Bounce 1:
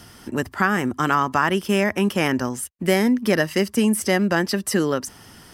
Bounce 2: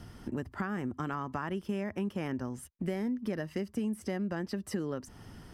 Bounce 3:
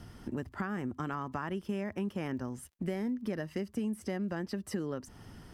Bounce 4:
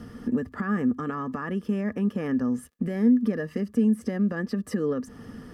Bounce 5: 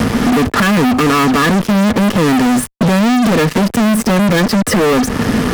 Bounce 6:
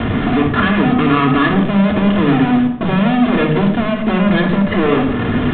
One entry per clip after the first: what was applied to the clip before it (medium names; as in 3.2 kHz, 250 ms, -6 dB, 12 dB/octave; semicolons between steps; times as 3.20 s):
tilt EQ -2.5 dB/octave; compression 3:1, threshold -27 dBFS, peak gain reduction 13 dB; trim -7.5 dB
crackle 70 per s -58 dBFS; trim -1 dB
peak limiter -28.5 dBFS, peak gain reduction 8 dB; small resonant body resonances 240/460/1200/1700 Hz, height 15 dB, ringing for 45 ms; trim +1.5 dB
fuzz box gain 44 dB, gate -47 dBFS; three bands compressed up and down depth 40%; trim +3 dB
simulated room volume 2300 m³, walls furnished, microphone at 3.2 m; resampled via 8 kHz; trim -5.5 dB